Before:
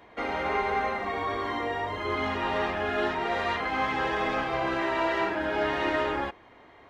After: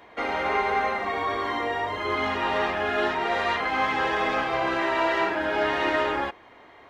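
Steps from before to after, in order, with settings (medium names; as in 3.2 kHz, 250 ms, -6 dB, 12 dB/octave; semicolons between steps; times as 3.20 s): bass shelf 280 Hz -6.5 dB; trim +4 dB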